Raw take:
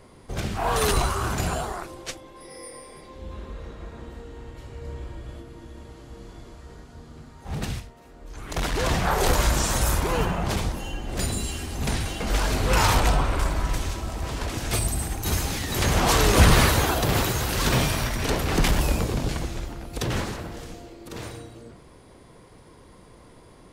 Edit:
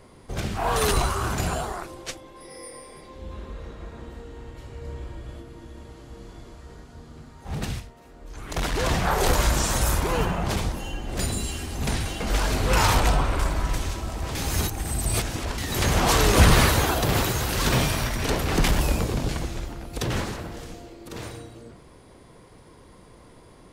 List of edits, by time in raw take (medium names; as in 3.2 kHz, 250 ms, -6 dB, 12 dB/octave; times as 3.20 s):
14.35–15.58 s: reverse